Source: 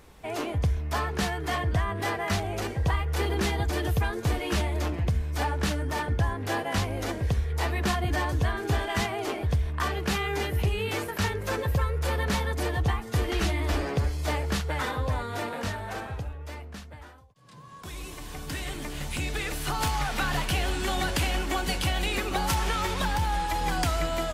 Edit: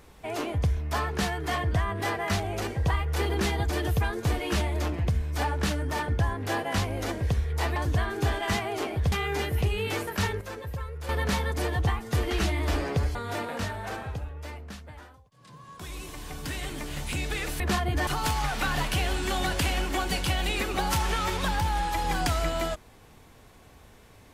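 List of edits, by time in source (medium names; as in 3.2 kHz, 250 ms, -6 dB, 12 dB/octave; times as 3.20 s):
7.76–8.23 s: move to 19.64 s
9.59–10.13 s: delete
11.42–12.10 s: gain -9 dB
14.16–15.19 s: delete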